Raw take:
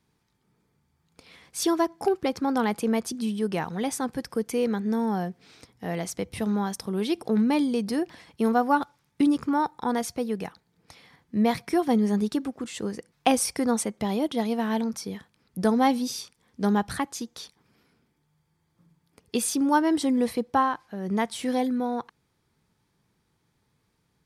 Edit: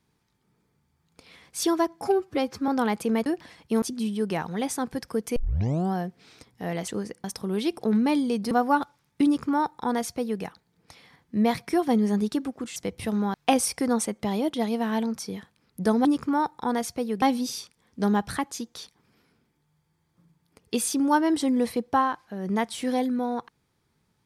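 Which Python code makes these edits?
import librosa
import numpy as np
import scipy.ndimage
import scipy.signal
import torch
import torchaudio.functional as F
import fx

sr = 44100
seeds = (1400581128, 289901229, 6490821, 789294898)

y = fx.edit(x, sr, fx.stretch_span(start_s=2.02, length_s=0.44, factor=1.5),
    fx.tape_start(start_s=4.58, length_s=0.58),
    fx.swap(start_s=6.1, length_s=0.58, other_s=12.76, other_length_s=0.36),
    fx.move(start_s=7.95, length_s=0.56, to_s=3.04),
    fx.duplicate(start_s=9.25, length_s=1.17, to_s=15.83), tone=tone)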